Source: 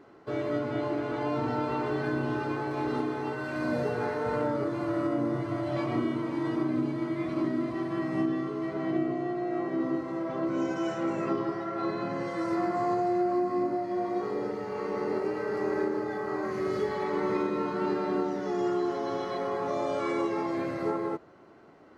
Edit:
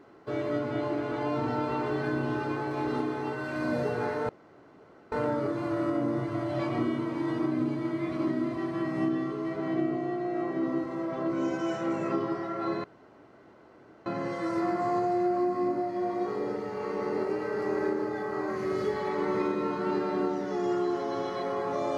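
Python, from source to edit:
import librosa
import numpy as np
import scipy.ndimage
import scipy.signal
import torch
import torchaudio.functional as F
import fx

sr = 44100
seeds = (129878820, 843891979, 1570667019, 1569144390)

y = fx.edit(x, sr, fx.insert_room_tone(at_s=4.29, length_s=0.83),
    fx.insert_room_tone(at_s=12.01, length_s=1.22), tone=tone)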